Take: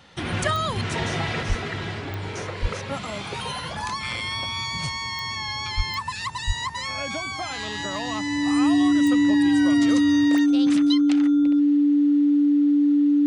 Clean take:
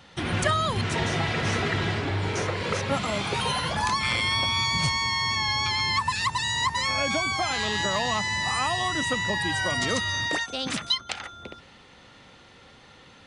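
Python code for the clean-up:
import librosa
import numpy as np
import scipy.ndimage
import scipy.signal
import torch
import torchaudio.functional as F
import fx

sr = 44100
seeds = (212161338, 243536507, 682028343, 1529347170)

y = fx.fix_declick_ar(x, sr, threshold=10.0)
y = fx.notch(y, sr, hz=290.0, q=30.0)
y = fx.fix_deplosive(y, sr, at_s=(1.48, 2.61, 5.76, 6.46))
y = fx.fix_level(y, sr, at_s=1.43, step_db=4.0)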